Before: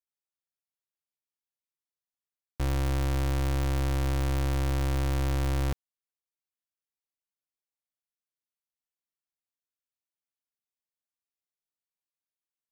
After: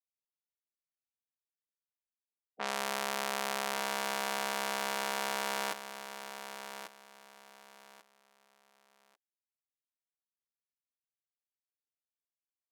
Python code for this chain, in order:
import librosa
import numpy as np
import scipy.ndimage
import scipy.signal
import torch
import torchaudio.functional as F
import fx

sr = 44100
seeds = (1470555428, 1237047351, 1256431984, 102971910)

y = fx.spec_gate(x, sr, threshold_db=-20, keep='weak')
y = fx.env_lowpass(y, sr, base_hz=1200.0, full_db=-34.0)
y = fx.echo_feedback(y, sr, ms=1142, feedback_pct=25, wet_db=-10.0)
y = y * librosa.db_to_amplitude(4.5)